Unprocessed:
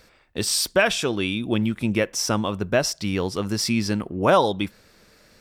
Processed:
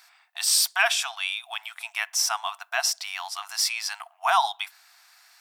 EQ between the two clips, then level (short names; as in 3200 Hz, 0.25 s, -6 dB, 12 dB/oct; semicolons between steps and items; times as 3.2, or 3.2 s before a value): brick-wall FIR high-pass 660 Hz; high shelf 8200 Hz +6 dB; 0.0 dB